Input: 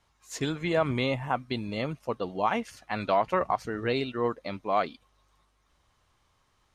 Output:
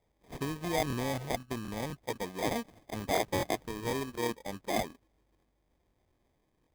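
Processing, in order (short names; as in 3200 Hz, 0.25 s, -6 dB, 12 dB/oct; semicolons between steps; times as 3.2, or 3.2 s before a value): treble ducked by the level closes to 2100 Hz, closed at -26 dBFS; sample-rate reducer 1400 Hz, jitter 0%; crackling interface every 0.25 s, samples 1024, repeat, from 0.88; gain -5 dB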